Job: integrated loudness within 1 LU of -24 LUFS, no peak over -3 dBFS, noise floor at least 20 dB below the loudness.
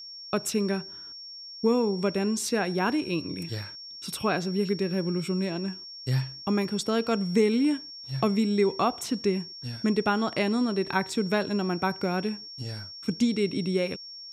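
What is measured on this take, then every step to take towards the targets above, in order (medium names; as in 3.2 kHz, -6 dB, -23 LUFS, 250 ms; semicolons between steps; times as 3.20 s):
steady tone 5.5 kHz; tone level -40 dBFS; loudness -28.0 LUFS; peak level -11.0 dBFS; loudness target -24.0 LUFS
-> band-stop 5.5 kHz, Q 30; trim +4 dB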